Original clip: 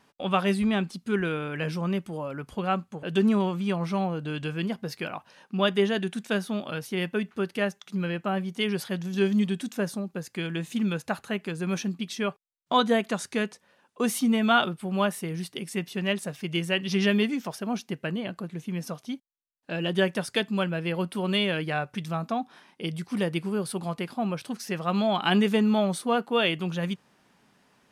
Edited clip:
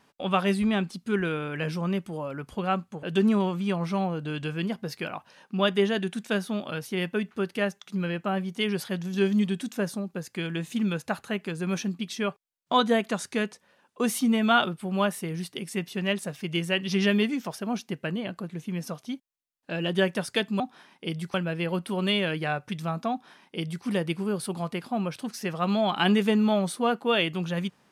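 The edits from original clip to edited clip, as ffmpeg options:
ffmpeg -i in.wav -filter_complex "[0:a]asplit=3[link_01][link_02][link_03];[link_01]atrim=end=20.602[link_04];[link_02]atrim=start=22.368:end=23.112[link_05];[link_03]atrim=start=20.598[link_06];[link_04][link_05]acrossfade=duration=0.004:curve1=hsin:curve2=hsin[link_07];[link_07][link_06]acrossfade=duration=0.004:curve1=hsin:curve2=hsin" out.wav

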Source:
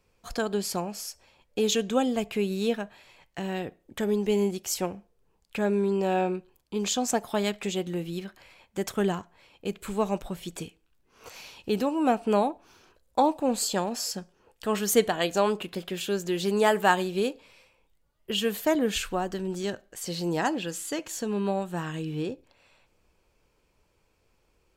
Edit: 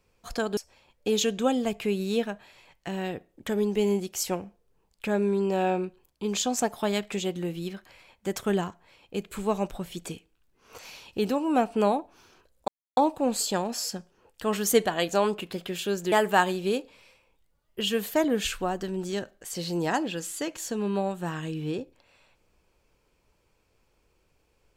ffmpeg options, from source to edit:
ffmpeg -i in.wav -filter_complex "[0:a]asplit=4[link_01][link_02][link_03][link_04];[link_01]atrim=end=0.572[link_05];[link_02]atrim=start=1.078:end=13.19,asetpts=PTS-STARTPTS,afade=type=out:start_time=12.108:duration=0.004:curve=hsin,apad=pad_dur=0.29[link_06];[link_03]atrim=start=13.19:end=16.342,asetpts=PTS-STARTPTS,afade=type=in:duration=0.004:curve=hsin[link_07];[link_04]atrim=start=16.628[link_08];[link_06][link_07]concat=n=2:v=0:a=1[link_09];[link_05][link_09]acrossfade=duration=0.004:curve1=hsin:curve2=hsin[link_10];[link_10][link_08]acrossfade=duration=0.004:curve1=hsin:curve2=hsin" out.wav

